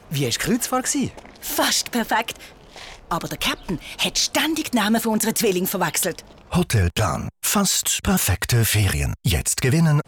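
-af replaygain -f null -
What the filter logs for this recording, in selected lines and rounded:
track_gain = +2.2 dB
track_peak = 0.218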